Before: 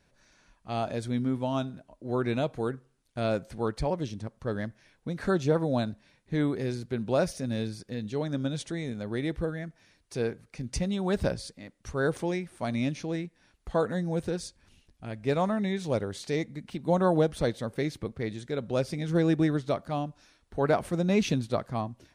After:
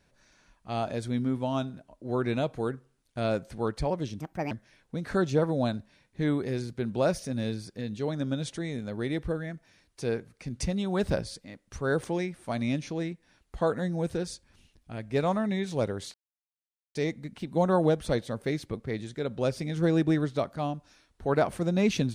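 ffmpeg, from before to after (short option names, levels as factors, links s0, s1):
-filter_complex "[0:a]asplit=4[s0][s1][s2][s3];[s0]atrim=end=4.204[s4];[s1]atrim=start=4.2:end=4.64,asetpts=PTS-STARTPTS,asetrate=62622,aresample=44100[s5];[s2]atrim=start=4.636:end=16.27,asetpts=PTS-STARTPTS,afade=t=out:st=11.63:d=0.004:c=hsin,apad=pad_dur=0.81[s6];[s3]atrim=start=16.27,asetpts=PTS-STARTPTS,afade=t=in:d=0.004:c=hsin[s7];[s4][s5]acrossfade=d=0.004:c1=hsin:c2=hsin[s8];[s6][s7]concat=n=2:v=0:a=1[s9];[s8][s9]acrossfade=d=0.004:c1=hsin:c2=hsin"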